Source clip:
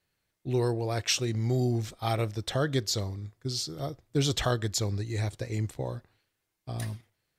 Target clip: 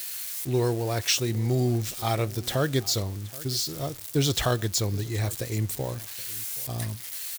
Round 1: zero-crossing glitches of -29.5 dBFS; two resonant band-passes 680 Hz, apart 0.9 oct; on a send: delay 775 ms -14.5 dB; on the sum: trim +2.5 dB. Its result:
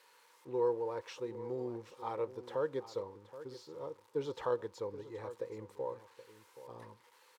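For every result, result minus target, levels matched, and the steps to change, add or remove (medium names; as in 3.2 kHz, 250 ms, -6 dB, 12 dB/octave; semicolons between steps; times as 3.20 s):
500 Hz band +6.5 dB; echo-to-direct +6.5 dB
remove: two resonant band-passes 680 Hz, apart 0.9 oct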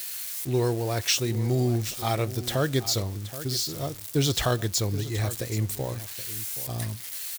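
echo-to-direct +6.5 dB
change: delay 775 ms -21 dB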